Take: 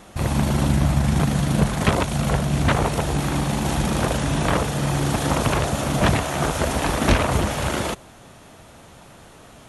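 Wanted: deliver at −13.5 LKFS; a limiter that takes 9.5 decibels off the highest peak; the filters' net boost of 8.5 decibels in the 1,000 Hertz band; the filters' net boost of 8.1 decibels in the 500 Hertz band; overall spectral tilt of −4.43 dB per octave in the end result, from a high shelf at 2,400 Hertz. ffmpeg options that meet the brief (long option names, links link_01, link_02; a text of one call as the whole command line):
ffmpeg -i in.wav -af "equalizer=frequency=500:width_type=o:gain=7.5,equalizer=frequency=1000:width_type=o:gain=7,highshelf=frequency=2400:gain=7.5,volume=5.5dB,alimiter=limit=-3dB:level=0:latency=1" out.wav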